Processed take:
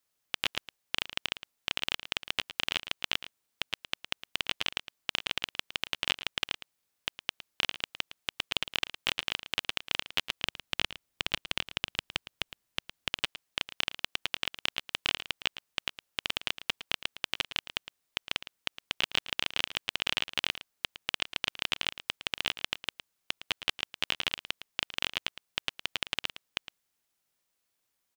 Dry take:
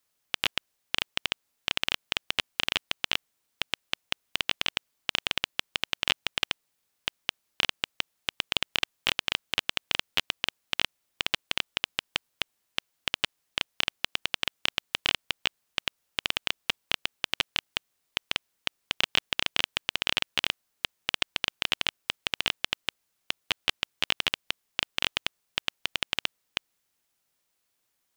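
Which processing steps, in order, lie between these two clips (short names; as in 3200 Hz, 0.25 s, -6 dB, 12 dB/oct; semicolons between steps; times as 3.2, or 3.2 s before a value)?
10.43–13.09 low shelf 210 Hz +8 dB; echo 0.111 s -13.5 dB; gain -3.5 dB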